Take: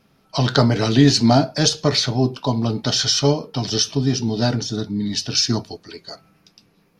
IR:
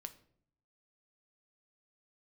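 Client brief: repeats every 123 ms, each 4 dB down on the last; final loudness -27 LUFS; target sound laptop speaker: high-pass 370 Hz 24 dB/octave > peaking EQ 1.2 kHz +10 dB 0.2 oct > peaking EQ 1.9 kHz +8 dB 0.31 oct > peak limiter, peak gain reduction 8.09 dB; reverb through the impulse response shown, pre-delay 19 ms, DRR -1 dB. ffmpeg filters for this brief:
-filter_complex "[0:a]aecho=1:1:123|246|369|492|615|738|861|984|1107:0.631|0.398|0.25|0.158|0.0994|0.0626|0.0394|0.0249|0.0157,asplit=2[s0][s1];[1:a]atrim=start_sample=2205,adelay=19[s2];[s1][s2]afir=irnorm=-1:irlink=0,volume=1.88[s3];[s0][s3]amix=inputs=2:normalize=0,highpass=f=370:w=0.5412,highpass=f=370:w=1.3066,equalizer=f=1200:t=o:w=0.2:g=10,equalizer=f=1900:t=o:w=0.31:g=8,volume=0.355,alimiter=limit=0.141:level=0:latency=1"

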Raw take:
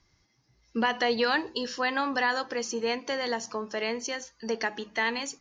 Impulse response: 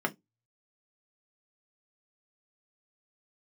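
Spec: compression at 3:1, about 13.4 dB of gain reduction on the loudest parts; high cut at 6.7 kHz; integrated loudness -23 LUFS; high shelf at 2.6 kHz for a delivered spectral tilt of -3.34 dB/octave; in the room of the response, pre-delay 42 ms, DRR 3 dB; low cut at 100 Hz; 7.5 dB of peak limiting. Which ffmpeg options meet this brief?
-filter_complex "[0:a]highpass=100,lowpass=6700,highshelf=f=2600:g=-5,acompressor=threshold=0.00891:ratio=3,alimiter=level_in=3.35:limit=0.0631:level=0:latency=1,volume=0.299,asplit=2[s0][s1];[1:a]atrim=start_sample=2205,adelay=42[s2];[s1][s2]afir=irnorm=-1:irlink=0,volume=0.282[s3];[s0][s3]amix=inputs=2:normalize=0,volume=9.44"

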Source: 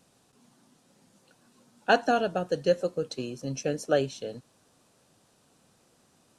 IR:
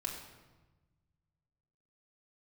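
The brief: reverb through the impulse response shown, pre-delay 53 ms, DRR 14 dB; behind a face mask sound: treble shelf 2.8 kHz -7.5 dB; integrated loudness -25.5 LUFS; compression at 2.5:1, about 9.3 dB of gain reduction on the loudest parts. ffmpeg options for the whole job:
-filter_complex "[0:a]acompressor=threshold=0.0282:ratio=2.5,asplit=2[s0][s1];[1:a]atrim=start_sample=2205,adelay=53[s2];[s1][s2]afir=irnorm=-1:irlink=0,volume=0.178[s3];[s0][s3]amix=inputs=2:normalize=0,highshelf=f=2800:g=-7.5,volume=3.16"

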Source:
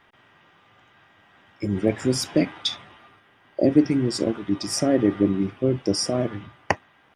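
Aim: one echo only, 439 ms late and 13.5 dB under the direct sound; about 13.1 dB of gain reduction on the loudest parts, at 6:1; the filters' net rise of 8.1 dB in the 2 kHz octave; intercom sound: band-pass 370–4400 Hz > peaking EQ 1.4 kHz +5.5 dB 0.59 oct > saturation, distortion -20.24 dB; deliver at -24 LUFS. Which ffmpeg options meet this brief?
-af "equalizer=f=2000:t=o:g=7,acompressor=threshold=0.0501:ratio=6,highpass=370,lowpass=4400,equalizer=f=1400:t=o:w=0.59:g=5.5,aecho=1:1:439:0.211,asoftclip=threshold=0.251,volume=3.55"

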